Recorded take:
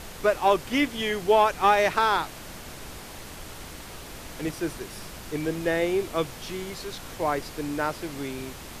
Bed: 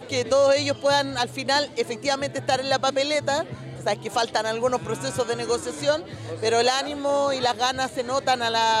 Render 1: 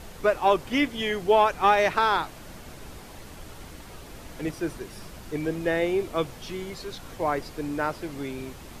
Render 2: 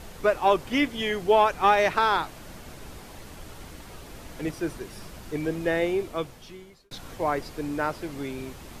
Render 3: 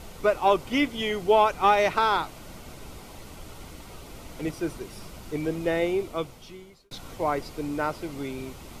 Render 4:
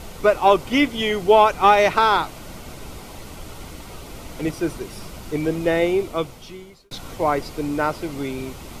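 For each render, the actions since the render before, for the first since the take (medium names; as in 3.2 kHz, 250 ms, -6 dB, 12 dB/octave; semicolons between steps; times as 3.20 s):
noise reduction 6 dB, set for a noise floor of -41 dBFS
5.84–6.91 s: fade out
band-stop 1.7 kHz, Q 6.5
trim +6 dB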